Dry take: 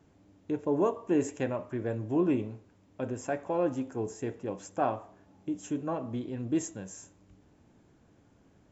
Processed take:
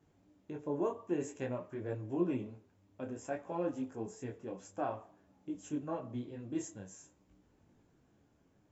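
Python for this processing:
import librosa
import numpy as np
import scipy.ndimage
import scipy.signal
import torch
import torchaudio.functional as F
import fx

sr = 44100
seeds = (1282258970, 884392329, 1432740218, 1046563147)

y = fx.detune_double(x, sr, cents=18)
y = y * librosa.db_to_amplitude(-3.5)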